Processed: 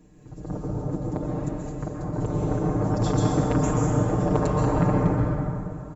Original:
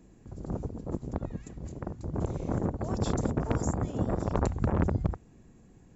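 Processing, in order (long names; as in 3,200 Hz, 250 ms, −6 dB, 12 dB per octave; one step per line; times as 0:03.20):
comb filter 6.6 ms, depth 89%
dense smooth reverb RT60 2.7 s, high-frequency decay 0.5×, pre-delay 110 ms, DRR −3.5 dB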